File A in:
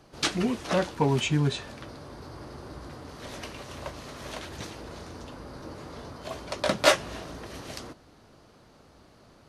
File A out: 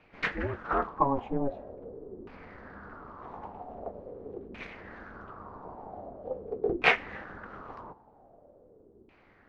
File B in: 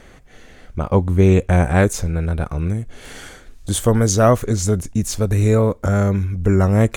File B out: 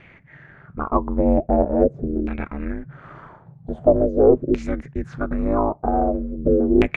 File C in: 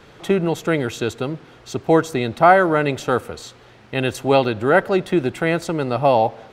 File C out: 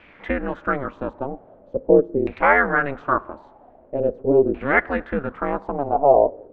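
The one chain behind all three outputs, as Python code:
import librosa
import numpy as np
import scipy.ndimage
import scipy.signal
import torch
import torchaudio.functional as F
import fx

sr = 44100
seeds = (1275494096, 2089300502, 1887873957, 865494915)

y = x * np.sin(2.0 * np.pi * 140.0 * np.arange(len(x)) / sr)
y = fx.filter_lfo_lowpass(y, sr, shape='saw_down', hz=0.44, low_hz=350.0, high_hz=2500.0, q=5.3)
y = y * librosa.db_to_amplitude(-4.0)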